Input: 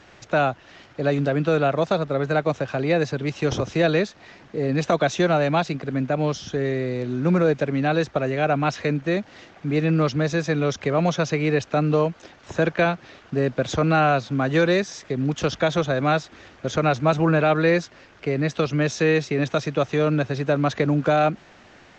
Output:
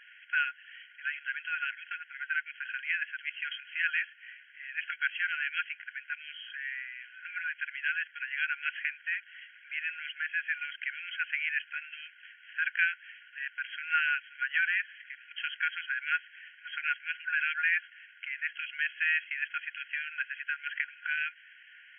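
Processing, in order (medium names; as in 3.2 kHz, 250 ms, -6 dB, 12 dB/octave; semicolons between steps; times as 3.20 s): brick-wall FIR band-pass 1.4–3.3 kHz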